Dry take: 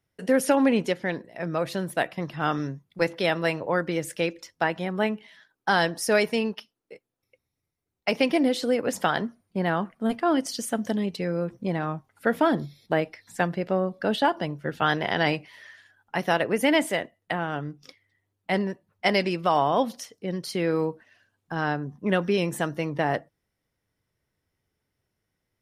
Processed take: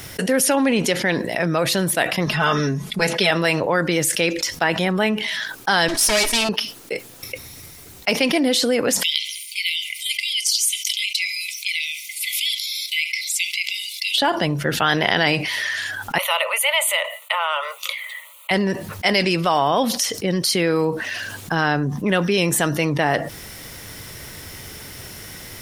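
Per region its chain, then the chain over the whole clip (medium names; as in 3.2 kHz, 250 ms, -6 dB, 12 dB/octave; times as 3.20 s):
2.26–3.31 s: low-pass 12 kHz 24 dB/octave + comb 4.7 ms, depth 95%
5.88–6.49 s: comb filter that takes the minimum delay 3.1 ms + low-pass 11 kHz + treble shelf 4.3 kHz +10.5 dB
9.03–14.18 s: brick-wall FIR high-pass 2 kHz + filtered feedback delay 67 ms, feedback 51%, low-pass 3.2 kHz, level -22 dB
16.18–18.51 s: steep high-pass 580 Hz 72 dB/octave + static phaser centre 1.1 kHz, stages 8
whole clip: treble shelf 2.1 kHz +10 dB; level flattener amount 70%; trim -1 dB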